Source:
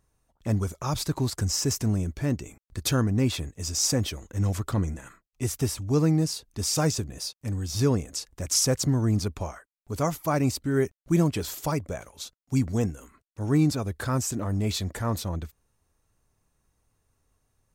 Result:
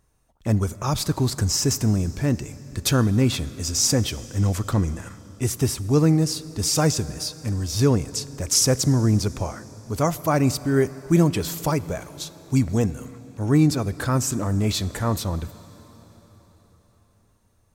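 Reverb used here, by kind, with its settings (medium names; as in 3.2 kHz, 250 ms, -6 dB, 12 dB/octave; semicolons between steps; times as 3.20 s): plate-style reverb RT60 4.7 s, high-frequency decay 0.85×, DRR 16 dB; trim +4.5 dB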